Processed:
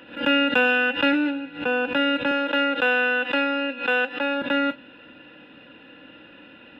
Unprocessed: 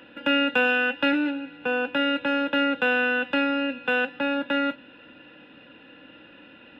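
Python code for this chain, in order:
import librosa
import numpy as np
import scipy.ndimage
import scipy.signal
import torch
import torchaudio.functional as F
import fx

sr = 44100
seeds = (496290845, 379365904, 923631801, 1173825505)

y = fx.highpass(x, sr, hz=310.0, slope=12, at=(2.31, 4.42))
y = fx.pre_swell(y, sr, db_per_s=140.0)
y = y * librosa.db_to_amplitude(2.0)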